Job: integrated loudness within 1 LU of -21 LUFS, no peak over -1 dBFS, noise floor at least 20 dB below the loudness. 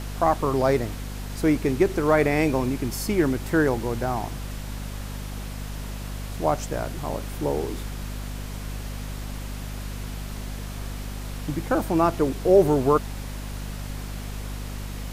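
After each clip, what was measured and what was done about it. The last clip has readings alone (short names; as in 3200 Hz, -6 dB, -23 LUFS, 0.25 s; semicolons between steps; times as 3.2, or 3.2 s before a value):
hum 50 Hz; harmonics up to 250 Hz; hum level -31 dBFS; noise floor -34 dBFS; noise floor target -47 dBFS; loudness -26.5 LUFS; peak -6.0 dBFS; loudness target -21.0 LUFS
-> de-hum 50 Hz, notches 5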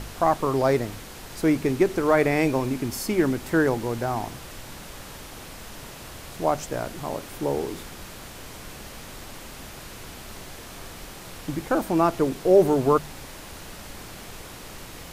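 hum none; noise floor -41 dBFS; noise floor target -44 dBFS
-> noise print and reduce 6 dB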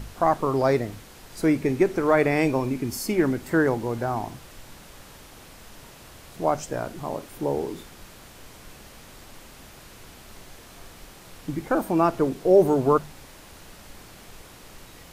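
noise floor -47 dBFS; loudness -24.0 LUFS; peak -6.5 dBFS; loudness target -21.0 LUFS
-> gain +3 dB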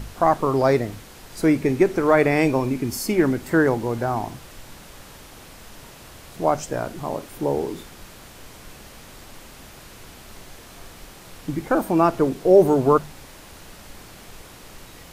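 loudness -21.0 LUFS; peak -3.5 dBFS; noise floor -44 dBFS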